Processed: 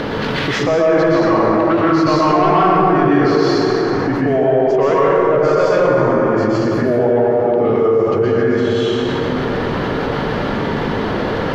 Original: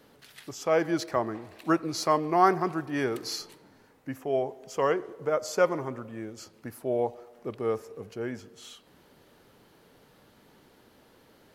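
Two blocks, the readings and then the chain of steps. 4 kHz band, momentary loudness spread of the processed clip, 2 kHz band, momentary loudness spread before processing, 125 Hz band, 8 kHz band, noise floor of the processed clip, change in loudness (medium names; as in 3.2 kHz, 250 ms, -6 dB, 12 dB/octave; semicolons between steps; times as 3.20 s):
+14.0 dB, 7 LU, +16.0 dB, 18 LU, +20.0 dB, no reading, -20 dBFS, +14.0 dB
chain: in parallel at -3 dB: upward compressor, threshold -32 dBFS; on the sum: saturation -15 dBFS, distortion -12 dB; distance through air 230 m; plate-style reverb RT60 2.8 s, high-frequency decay 0.5×, pre-delay 105 ms, DRR -9 dB; level flattener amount 70%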